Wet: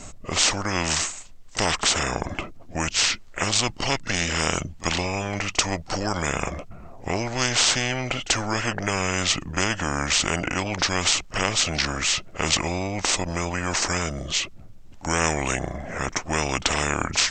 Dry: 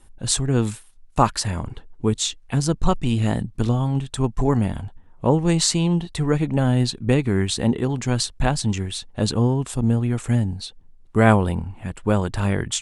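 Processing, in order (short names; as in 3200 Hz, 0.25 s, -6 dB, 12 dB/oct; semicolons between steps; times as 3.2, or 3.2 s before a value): speed mistake 45 rpm record played at 33 rpm; pre-echo 37 ms -24 dB; spectral compressor 4:1; gain -1 dB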